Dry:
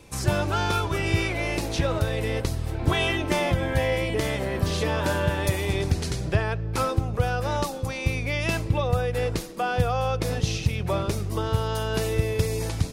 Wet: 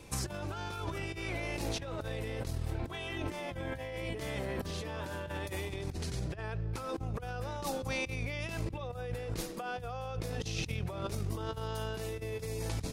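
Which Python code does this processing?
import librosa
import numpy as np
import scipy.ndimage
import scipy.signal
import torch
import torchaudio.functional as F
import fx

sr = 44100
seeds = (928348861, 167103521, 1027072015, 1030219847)

y = fx.peak_eq(x, sr, hz=73.0, db=2.5, octaves=0.75, at=(5.93, 8.2))
y = fx.over_compress(y, sr, threshold_db=-31.0, ratio=-1.0)
y = y * 10.0 ** (-7.0 / 20.0)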